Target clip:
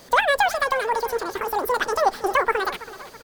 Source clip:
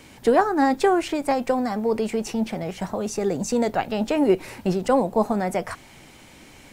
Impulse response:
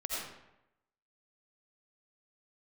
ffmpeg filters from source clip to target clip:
-filter_complex "[0:a]asplit=2[link_01][link_02];[link_02]aecho=0:1:683|1366|2049|2732:0.15|0.0703|0.0331|0.0155[link_03];[link_01][link_03]amix=inputs=2:normalize=0,asetrate=91728,aresample=44100,asplit=2[link_04][link_05];[link_05]aecho=0:1:258:0.075[link_06];[link_04][link_06]amix=inputs=2:normalize=0"

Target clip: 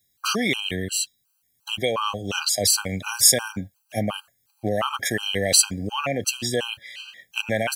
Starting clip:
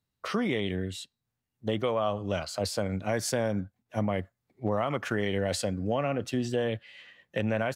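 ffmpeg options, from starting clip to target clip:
ffmpeg -i in.wav -af "crystalizer=i=9.5:c=0,afftfilt=real='re*gt(sin(2*PI*2.8*pts/sr)*(1-2*mod(floor(b*sr/1024/800),2)),0)':imag='im*gt(sin(2*PI*2.8*pts/sr)*(1-2*mod(floor(b*sr/1024/800),2)),0)':win_size=1024:overlap=0.75,volume=3dB" out.wav

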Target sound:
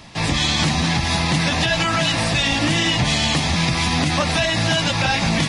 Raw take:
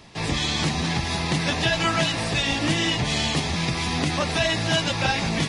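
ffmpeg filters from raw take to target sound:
ffmpeg -i in.wav -af "equalizer=frequency=410:width_type=o:width=0.37:gain=-8.5,alimiter=level_in=14.5dB:limit=-1dB:release=50:level=0:latency=1,volume=-8dB" out.wav

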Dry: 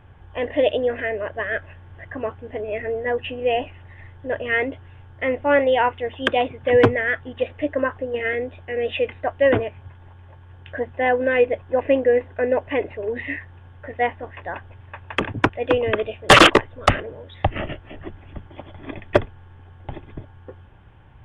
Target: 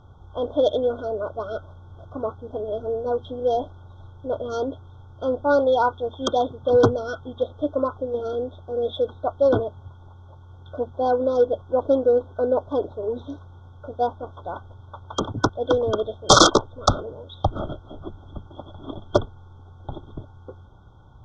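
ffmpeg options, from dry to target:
ffmpeg -i in.wav -af "acontrast=26,afftfilt=real='re*(1-between(b*sr/4096,1500,3200))':imag='im*(1-between(b*sr/4096,1500,3200))':win_size=4096:overlap=0.75,lowpass=frequency=5900:width_type=q:width=4.6,volume=-5.5dB" out.wav

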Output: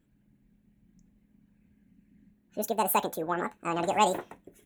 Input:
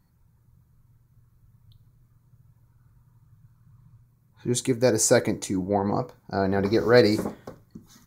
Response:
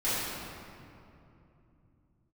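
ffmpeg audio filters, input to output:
-af "asetrate=76440,aresample=44100,volume=-6dB"

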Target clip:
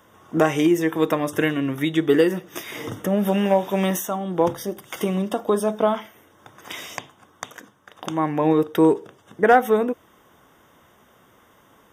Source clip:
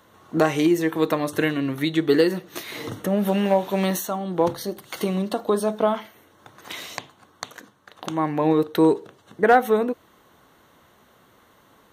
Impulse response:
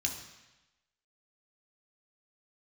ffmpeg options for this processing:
-af "asuperstop=centerf=4200:order=12:qfactor=4.8,volume=1dB"

